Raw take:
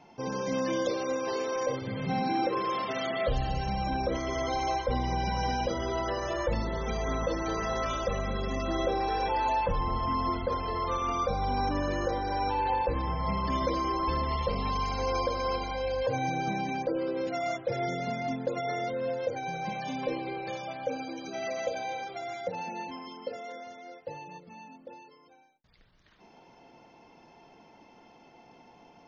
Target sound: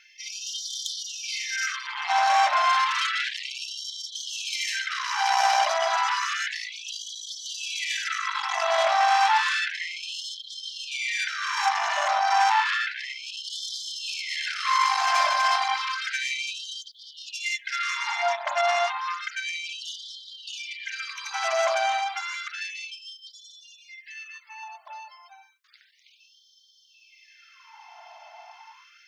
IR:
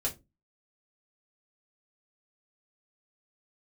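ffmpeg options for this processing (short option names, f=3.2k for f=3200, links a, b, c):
-filter_complex "[0:a]asettb=1/sr,asplit=3[a][b][c];[a]atrim=end=22.944[d];[b]atrim=start=22.94:end=24.63,asetpts=PTS-STARTPTS,afade=t=in:d=0.004:c=qsin,afade=t=out:st=1.686:d=0.004:c=qsin,equalizer=f=1k:t=o:w=1:g=-8,equalizer=f=2k:t=o:w=1:g=7,equalizer=f=4k:t=o:w=1:g=-5[e];[c]atrim=start=24.626[f];[d][e]acrossfade=d=0.004:c1=hsin:c2=qsin[g];[g][f]acrossfade=d=0.004:c1=qsin:c2=hsin,aeval=exprs='0.178*(cos(1*acos(clip(val(0)/0.178,-1,1)))-cos(1*PI/2))+0.0141*(cos(2*acos(clip(val(0)/0.178,-1,1)))-cos(2*PI/2))+0.0141*(cos(4*acos(clip(val(0)/0.178,-1,1)))-cos(4*PI/2))+0.0282*(cos(5*acos(clip(val(0)/0.178,-1,1)))-cos(5*PI/2))+0.0355*(cos(8*acos(clip(val(0)/0.178,-1,1)))-cos(8*PI/2))':c=same,asplit=2[h][i];[1:a]atrim=start_sample=2205[j];[i][j]afir=irnorm=-1:irlink=0,volume=-23.5dB[k];[h][k]amix=inputs=2:normalize=0,afftfilt=real='re*gte(b*sr/1024,590*pow(3100/590,0.5+0.5*sin(2*PI*0.31*pts/sr)))':imag='im*gte(b*sr/1024,590*pow(3100/590,0.5+0.5*sin(2*PI*0.31*pts/sr)))':win_size=1024:overlap=0.75,volume=5.5dB"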